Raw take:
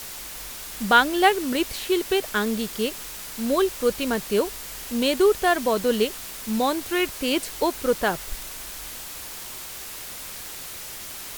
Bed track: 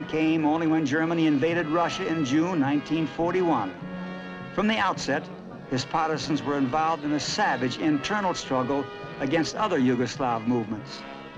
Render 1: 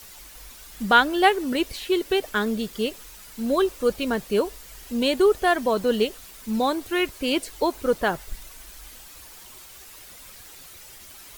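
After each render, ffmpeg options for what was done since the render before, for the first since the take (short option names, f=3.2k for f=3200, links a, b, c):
-af "afftdn=nr=10:nf=-37"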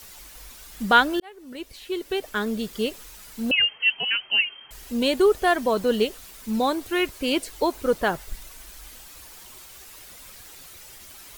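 -filter_complex "[0:a]asettb=1/sr,asplit=3[a][b][c];[a]atrim=end=3.514[d];[b]atrim=start=3.51:end=4.71,asetpts=PTS-STARTPTS,afade=t=in:d=0.004:c=qsin,afade=t=out:st=1.196:d=0.004:c=qsin,lowpass=f=2.7k:t=q:w=0.5098,lowpass=f=2.7k:t=q:w=0.6013,lowpass=f=2.7k:t=q:w=0.9,lowpass=f=2.7k:t=q:w=2.563,afreqshift=-3200[e];[c]atrim=start=4.706[f];[d][e]acrossfade=d=0.004:c1=hsin:c2=qsin[g];[g][f]acrossfade=d=0.004:c1=qsin:c2=hsin,asplit=2[h][i];[h]atrim=end=1.2,asetpts=PTS-STARTPTS,afade=t=out:st=1.196:d=0.004:c=hsin[j];[i]atrim=start=1.2,asetpts=PTS-STARTPTS,afade=t=in:d=1.57[k];[j][k]concat=n=2:v=0:a=1"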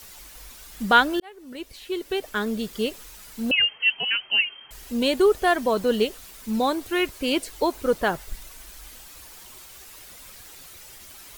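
-af anull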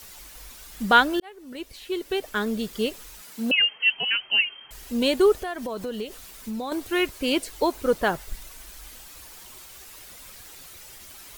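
-filter_complex "[0:a]asettb=1/sr,asplit=3[a][b][c];[a]atrim=end=3.214[d];[b]atrim=start=3.21:end=3.92,asetpts=PTS-STARTPTS,afade=t=in:d=0.004:c=qsin,afade=t=out:st=0.706:d=0.004:c=qsin,highpass=f=140:w=0.5412,highpass=f=140:w=1.3066[e];[c]atrim=start=3.916[f];[d][e]acrossfade=d=0.004:c1=hsin:c2=qsin[g];[g][f]acrossfade=d=0.004:c1=qsin:c2=hsin,asettb=1/sr,asplit=3[h][i][j];[h]atrim=end=5.424[k];[i]atrim=start=5.42:end=6.72,asetpts=PTS-STARTPTS,afade=t=in:d=0.004:c=qsin,afade=t=out:st=1.296:d=0.004:c=qsin,acompressor=threshold=-29dB:ratio=4:attack=3.2:release=140:knee=1:detection=peak[l];[j]atrim=start=6.716[m];[k][l]acrossfade=d=0.004:c1=hsin:c2=qsin[n];[n][m]acrossfade=d=0.004:c1=qsin:c2=hsin"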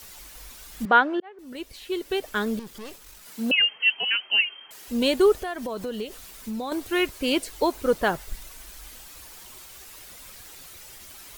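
-filter_complex "[0:a]asettb=1/sr,asplit=3[a][b][c];[a]atrim=end=0.854[d];[b]atrim=start=0.85:end=1.39,asetpts=PTS-STARTPTS,afade=t=in:d=0.004:c=qsin,afade=t=out:st=0.536:d=0.004:c=qsin,highpass=250,lowpass=2k[e];[c]atrim=start=1.386[f];[d][e]acrossfade=d=0.004:c1=hsin:c2=qsin[g];[g][f]acrossfade=d=0.004:c1=qsin:c2=hsin,asettb=1/sr,asplit=3[h][i][j];[h]atrim=end=2.594[k];[i]atrim=start=2.59:end=3.26,asetpts=PTS-STARTPTS,afade=t=in:d=0.004:c=qsin,afade=t=out:st=0.666:d=0.004:c=qsin,aeval=exprs='(tanh(70.8*val(0)+0.7)-tanh(0.7))/70.8':c=same[l];[j]atrim=start=3.256[m];[k][l]acrossfade=d=0.004:c1=hsin:c2=qsin[n];[n][m]acrossfade=d=0.004:c1=qsin:c2=hsin,asettb=1/sr,asplit=3[o][p][q];[o]atrim=end=3.864[r];[p]atrim=start=3.86:end=4.88,asetpts=PTS-STARTPTS,afade=t=in:d=0.004:c=qsin,afade=t=out:st=1.016:d=0.004:c=qsin,highpass=250[s];[q]atrim=start=4.876[t];[r][s]acrossfade=d=0.004:c1=hsin:c2=qsin[u];[u][t]acrossfade=d=0.004:c1=qsin:c2=hsin"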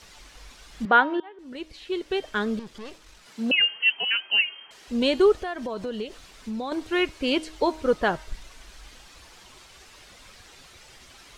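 -af "lowpass=5.5k,bandreject=f=314.8:t=h:w=4,bandreject=f=629.6:t=h:w=4,bandreject=f=944.4:t=h:w=4,bandreject=f=1.2592k:t=h:w=4,bandreject=f=1.574k:t=h:w=4,bandreject=f=1.8888k:t=h:w=4,bandreject=f=2.2036k:t=h:w=4,bandreject=f=2.5184k:t=h:w=4,bandreject=f=2.8332k:t=h:w=4,bandreject=f=3.148k:t=h:w=4,bandreject=f=3.4628k:t=h:w=4,bandreject=f=3.7776k:t=h:w=4,bandreject=f=4.0924k:t=h:w=4,bandreject=f=4.4072k:t=h:w=4,bandreject=f=4.722k:t=h:w=4,bandreject=f=5.0368k:t=h:w=4"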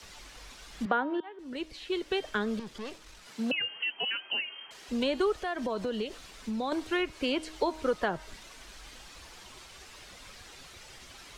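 -filter_complex "[0:a]acrossover=split=190|1300|1700[a][b][c][d];[d]alimiter=limit=-24dB:level=0:latency=1:release=210[e];[a][b][c][e]amix=inputs=4:normalize=0,acrossover=split=110|620[f][g][h];[f]acompressor=threshold=-50dB:ratio=4[i];[g]acompressor=threshold=-31dB:ratio=4[j];[h]acompressor=threshold=-30dB:ratio=4[k];[i][j][k]amix=inputs=3:normalize=0"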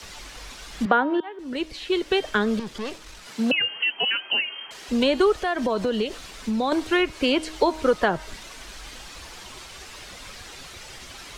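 -af "volume=8.5dB"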